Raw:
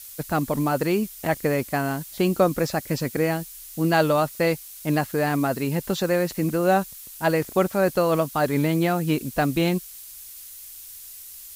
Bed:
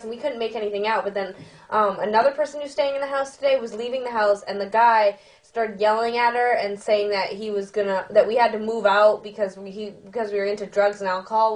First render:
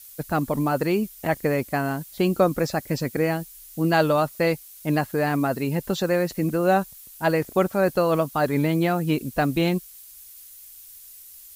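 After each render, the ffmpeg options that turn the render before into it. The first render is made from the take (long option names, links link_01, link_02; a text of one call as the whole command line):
ffmpeg -i in.wav -af "afftdn=noise_reduction=6:noise_floor=-42" out.wav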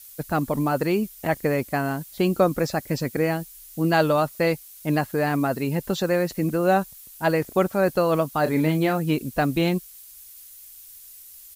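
ffmpeg -i in.wav -filter_complex "[0:a]asplit=3[link_01][link_02][link_03];[link_01]afade=type=out:start_time=8.45:duration=0.02[link_04];[link_02]asplit=2[link_05][link_06];[link_06]adelay=32,volume=-9dB[link_07];[link_05][link_07]amix=inputs=2:normalize=0,afade=type=in:start_time=8.45:duration=0.02,afade=type=out:start_time=8.97:duration=0.02[link_08];[link_03]afade=type=in:start_time=8.97:duration=0.02[link_09];[link_04][link_08][link_09]amix=inputs=3:normalize=0" out.wav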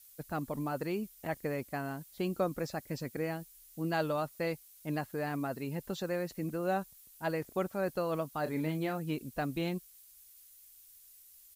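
ffmpeg -i in.wav -af "volume=-12.5dB" out.wav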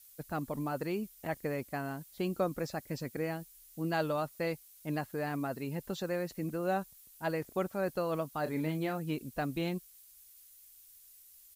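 ffmpeg -i in.wav -af anull out.wav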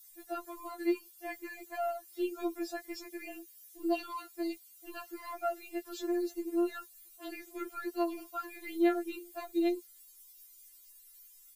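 ffmpeg -i in.wav -filter_complex "[0:a]asplit=2[link_01][link_02];[link_02]asoftclip=type=tanh:threshold=-36dB,volume=-9dB[link_03];[link_01][link_03]amix=inputs=2:normalize=0,afftfilt=real='re*4*eq(mod(b,16),0)':imag='im*4*eq(mod(b,16),0)':win_size=2048:overlap=0.75" out.wav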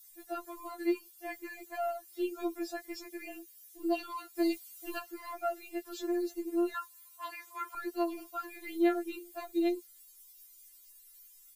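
ffmpeg -i in.wav -filter_complex "[0:a]asplit=3[link_01][link_02][link_03];[link_01]afade=type=out:start_time=4.35:duration=0.02[link_04];[link_02]acontrast=59,afade=type=in:start_time=4.35:duration=0.02,afade=type=out:start_time=4.98:duration=0.02[link_05];[link_03]afade=type=in:start_time=4.98:duration=0.02[link_06];[link_04][link_05][link_06]amix=inputs=3:normalize=0,asettb=1/sr,asplit=3[link_07][link_08][link_09];[link_07]atrim=end=6.744[link_10];[link_08]atrim=start=6.74:end=7.75,asetpts=PTS-STARTPTS,afade=type=in:duration=0.004:curve=qsin,afade=type=out:start_time=1.006:duration=0.004:curve=qsin,highpass=frequency=1000:width_type=q:width=9[link_11];[link_09]atrim=start=7.746[link_12];[link_10][link_11]acrossfade=duration=0.004:curve1=hsin:curve2=qsin[link_13];[link_13][link_12]acrossfade=duration=0.004:curve1=qsin:curve2=hsin" out.wav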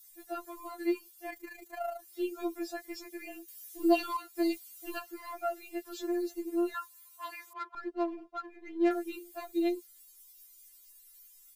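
ffmpeg -i in.wav -filter_complex "[0:a]asplit=3[link_01][link_02][link_03];[link_01]afade=type=out:start_time=1.29:duration=0.02[link_04];[link_02]tremolo=f=27:d=0.571,afade=type=in:start_time=1.29:duration=0.02,afade=type=out:start_time=2:duration=0.02[link_05];[link_03]afade=type=in:start_time=2:duration=0.02[link_06];[link_04][link_05][link_06]amix=inputs=3:normalize=0,asettb=1/sr,asplit=3[link_07][link_08][link_09];[link_07]atrim=end=3.484[link_10];[link_08]atrim=start=3.48:end=4.17,asetpts=PTS-STARTPTS,afade=type=in:duration=0.004:curve=qsin,afade=type=out:start_time=0.686:duration=0.004:curve=qsin,acontrast=67[link_11];[link_09]atrim=start=4.166[link_12];[link_10][link_11]acrossfade=duration=0.004:curve1=hsin:curve2=qsin[link_13];[link_13][link_12]acrossfade=duration=0.004:curve1=qsin:curve2=hsin,asettb=1/sr,asplit=3[link_14][link_15][link_16];[link_14]atrim=end=7.534[link_17];[link_15]atrim=start=7.53:end=8.91,asetpts=PTS-STARTPTS,afade=type=in:duration=0.004:curve=qsin,afade=type=out:start_time=1.376:duration=0.004:curve=qsin,adynamicsmooth=sensitivity=4.5:basefreq=1100[link_18];[link_16]atrim=start=8.906[link_19];[link_17][link_18]acrossfade=duration=0.004:curve1=hsin:curve2=qsin[link_20];[link_20][link_19]acrossfade=duration=0.004:curve1=qsin:curve2=hsin" out.wav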